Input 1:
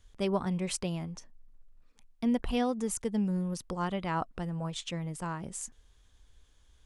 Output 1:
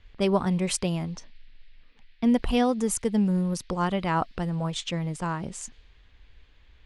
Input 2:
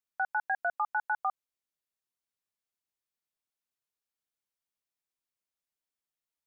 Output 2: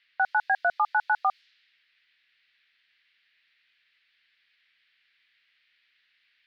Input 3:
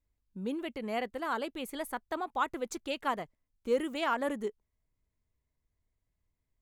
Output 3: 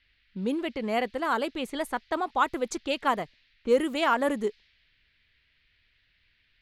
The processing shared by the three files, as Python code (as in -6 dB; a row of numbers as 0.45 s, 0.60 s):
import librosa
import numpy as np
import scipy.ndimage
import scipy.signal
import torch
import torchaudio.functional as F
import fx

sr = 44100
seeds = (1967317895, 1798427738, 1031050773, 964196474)

y = fx.dmg_noise_band(x, sr, seeds[0], low_hz=1700.0, high_hz=4700.0, level_db=-71.0)
y = fx.env_lowpass(y, sr, base_hz=2400.0, full_db=-30.0)
y = F.gain(torch.from_numpy(y), 6.5).numpy()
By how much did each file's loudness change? +6.5 LU, +6.5 LU, +6.5 LU